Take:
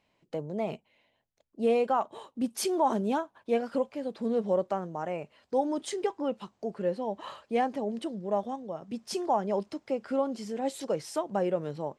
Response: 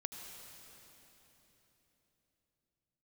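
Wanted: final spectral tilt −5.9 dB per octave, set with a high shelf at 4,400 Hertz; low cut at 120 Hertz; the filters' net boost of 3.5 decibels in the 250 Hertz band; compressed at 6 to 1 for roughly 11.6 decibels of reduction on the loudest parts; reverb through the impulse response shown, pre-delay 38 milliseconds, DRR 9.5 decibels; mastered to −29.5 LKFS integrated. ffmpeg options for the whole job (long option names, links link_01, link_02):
-filter_complex "[0:a]highpass=120,equalizer=frequency=250:width_type=o:gain=4.5,highshelf=frequency=4400:gain=-9,acompressor=threshold=-33dB:ratio=6,asplit=2[link_01][link_02];[1:a]atrim=start_sample=2205,adelay=38[link_03];[link_02][link_03]afir=irnorm=-1:irlink=0,volume=-8dB[link_04];[link_01][link_04]amix=inputs=2:normalize=0,volume=8.5dB"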